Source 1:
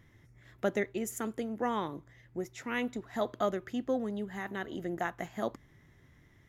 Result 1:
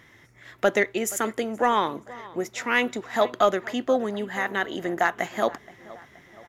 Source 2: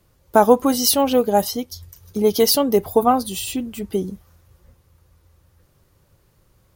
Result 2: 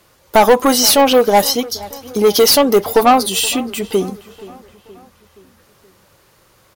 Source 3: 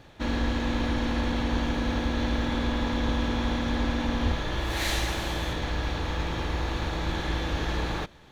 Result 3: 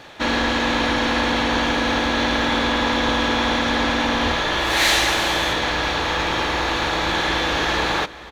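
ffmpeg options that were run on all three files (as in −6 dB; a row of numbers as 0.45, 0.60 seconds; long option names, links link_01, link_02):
-filter_complex "[0:a]asplit=2[link_01][link_02];[link_02]highpass=frequency=720:poles=1,volume=20dB,asoftclip=type=tanh:threshold=-1dB[link_03];[link_01][link_03]amix=inputs=2:normalize=0,lowpass=frequency=7300:poles=1,volume=-6dB,asplit=2[link_04][link_05];[link_05]adelay=474,lowpass=frequency=3400:poles=1,volume=-19.5dB,asplit=2[link_06][link_07];[link_07]adelay=474,lowpass=frequency=3400:poles=1,volume=0.54,asplit=2[link_08][link_09];[link_09]adelay=474,lowpass=frequency=3400:poles=1,volume=0.54,asplit=2[link_10][link_11];[link_11]adelay=474,lowpass=frequency=3400:poles=1,volume=0.54[link_12];[link_04][link_06][link_08][link_10][link_12]amix=inputs=5:normalize=0"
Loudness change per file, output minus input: +10.0, +5.5, +9.5 LU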